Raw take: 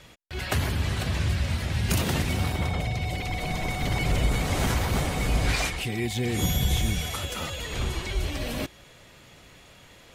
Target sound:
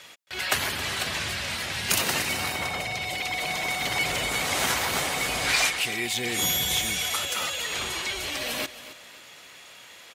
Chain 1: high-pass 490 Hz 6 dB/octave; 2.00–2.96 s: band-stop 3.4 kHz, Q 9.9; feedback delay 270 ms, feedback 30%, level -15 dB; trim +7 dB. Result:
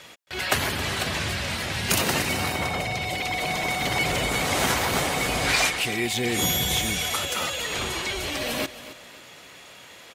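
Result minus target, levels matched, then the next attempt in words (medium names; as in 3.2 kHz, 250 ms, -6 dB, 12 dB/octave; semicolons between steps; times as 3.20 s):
500 Hz band +4.0 dB
high-pass 1.2 kHz 6 dB/octave; 2.00–2.96 s: band-stop 3.4 kHz, Q 9.9; feedback delay 270 ms, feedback 30%, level -15 dB; trim +7 dB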